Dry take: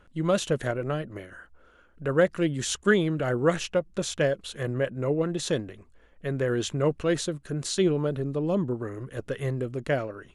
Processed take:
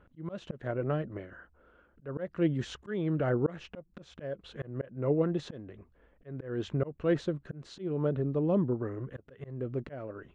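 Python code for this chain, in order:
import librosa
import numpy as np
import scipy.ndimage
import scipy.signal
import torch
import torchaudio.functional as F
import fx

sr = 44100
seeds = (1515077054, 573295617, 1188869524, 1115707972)

y = fx.highpass(x, sr, hz=41.0, slope=6)
y = fx.auto_swell(y, sr, attack_ms=287.0)
y = fx.spacing_loss(y, sr, db_at_10k=33)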